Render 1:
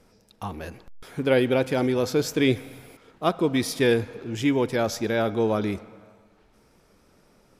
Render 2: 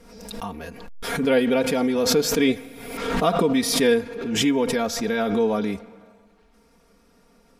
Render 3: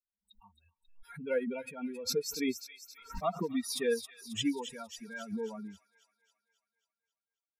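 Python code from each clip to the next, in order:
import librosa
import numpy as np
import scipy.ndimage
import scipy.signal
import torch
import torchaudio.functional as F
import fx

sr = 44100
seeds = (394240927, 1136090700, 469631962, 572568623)

y1 = x + 0.77 * np.pad(x, (int(4.3 * sr / 1000.0), 0))[:len(x)]
y1 = fx.pre_swell(y1, sr, db_per_s=48.0)
y1 = y1 * 10.0 ** (-1.5 / 20.0)
y2 = fx.bin_expand(y1, sr, power=3.0)
y2 = fx.echo_wet_highpass(y2, sr, ms=270, feedback_pct=53, hz=2700.0, wet_db=-7.5)
y2 = y2 * 10.0 ** (-7.5 / 20.0)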